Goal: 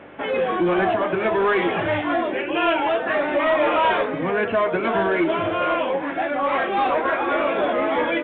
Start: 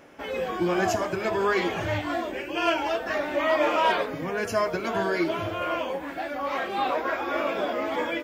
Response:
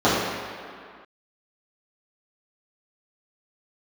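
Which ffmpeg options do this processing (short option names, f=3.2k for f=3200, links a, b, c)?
-filter_complex "[0:a]asplit=2[a][b];[b]alimiter=limit=-19.5dB:level=0:latency=1:release=285,volume=2.5dB[c];[a][c]amix=inputs=2:normalize=0,aeval=exprs='val(0)+0.00501*(sin(2*PI*50*n/s)+sin(2*PI*2*50*n/s)/2+sin(2*PI*3*50*n/s)/3+sin(2*PI*4*50*n/s)/4+sin(2*PI*5*50*n/s)/5)':c=same,highpass=160,lowpass=3.1k,aeval=exprs='0.398*(cos(1*acos(clip(val(0)/0.398,-1,1)))-cos(1*PI/2))+0.0355*(cos(5*acos(clip(val(0)/0.398,-1,1)))-cos(5*PI/2))':c=same,volume=-1.5dB" -ar 8000 -c:a pcm_mulaw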